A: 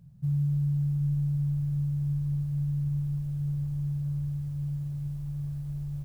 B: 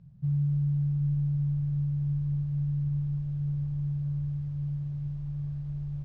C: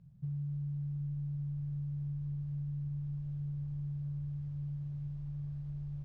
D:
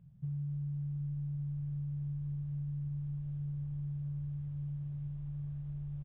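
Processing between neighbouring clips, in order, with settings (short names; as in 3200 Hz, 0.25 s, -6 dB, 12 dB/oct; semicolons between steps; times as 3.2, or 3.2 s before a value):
air absorption 170 m
compressor, threshold -30 dBFS, peak gain reduction 5.5 dB; gain -5.5 dB
downsampling 8000 Hz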